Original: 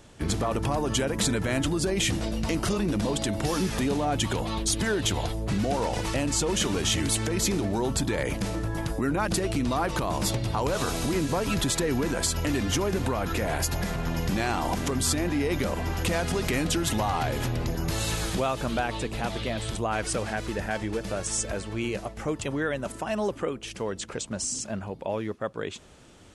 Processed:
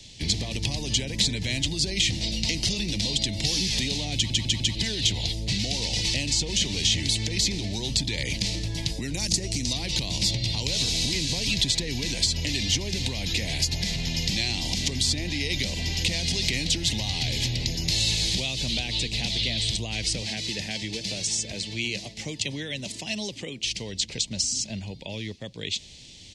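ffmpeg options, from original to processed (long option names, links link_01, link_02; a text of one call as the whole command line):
ffmpeg -i in.wav -filter_complex "[0:a]asettb=1/sr,asplit=3[link_01][link_02][link_03];[link_01]atrim=end=9.144[link_04];[link_02]atrim=start=9.14:end=9.73,asetpts=PTS-STARTPTS,afade=type=in:duration=0.004:curve=qsin,afade=type=out:start_time=0.586:duration=0.004:curve=qsin,highshelf=frequency=4700:width_type=q:width=1.5:gain=10[link_05];[link_03]atrim=start=9.726[link_06];[link_04][link_05]acrossfade=duration=0.004:curve1=hsin:curve2=qsin[link_07];[link_07][link_06]acrossfade=duration=0.004:curve1=qsin:curve2=hsin,asettb=1/sr,asplit=3[link_08][link_09][link_10];[link_08]atrim=end=20.214[link_11];[link_09]atrim=start=20.21:end=23.63,asetpts=PTS-STARTPTS,afade=type=in:duration=0.004:curve=qsin,afade=type=out:start_time=3.416:duration=0.004:curve=qsin,highpass=120[link_12];[link_10]atrim=start=23.626[link_13];[link_11][link_12]acrossfade=duration=0.004:curve1=hsin:curve2=qsin[link_14];[link_14][link_13]acrossfade=duration=0.004:curve1=qsin:curve2=hsin,asplit=5[link_15][link_16][link_17][link_18][link_19];[link_15]atrim=end=4.302[link_20];[link_16]atrim=start=4.148:end=4.302[link_21];[link_17]atrim=start=4.148:end=4.302[link_22];[link_18]atrim=start=4.148:end=4.302[link_23];[link_19]atrim=start=4.748[link_24];[link_20][link_21]acrossfade=duration=0.004:curve1=hsin:curve2=hsin[link_25];[link_25][link_22]acrossfade=duration=0.004:curve1=hsin:curve2=hsin[link_26];[link_26][link_23]acrossfade=duration=0.004:curve1=hsin:curve2=hsin[link_27];[link_27][link_24]acrossfade=duration=0.004:curve1=hsin:curve2=hsin,acrossover=split=110|440|1900[link_28][link_29][link_30][link_31];[link_28]acompressor=threshold=-34dB:ratio=4[link_32];[link_29]acompressor=threshold=-32dB:ratio=4[link_33];[link_30]acompressor=threshold=-33dB:ratio=4[link_34];[link_31]acompressor=threshold=-36dB:ratio=4[link_35];[link_32][link_33][link_34][link_35]amix=inputs=4:normalize=0,firequalizer=gain_entry='entry(130,0);entry(370,-9);entry(920,-13);entry(1300,-27);entry(2000,2);entry(4200,15);entry(11000,-6)':delay=0.05:min_phase=1,volume=3dB" out.wav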